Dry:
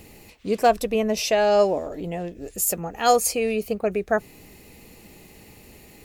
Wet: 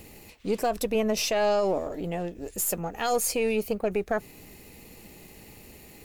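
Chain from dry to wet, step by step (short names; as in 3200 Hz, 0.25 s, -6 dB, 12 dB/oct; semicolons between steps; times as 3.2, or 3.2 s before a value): half-wave gain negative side -3 dB; high shelf 11000 Hz +3.5 dB; limiter -16.5 dBFS, peak gain reduction 11 dB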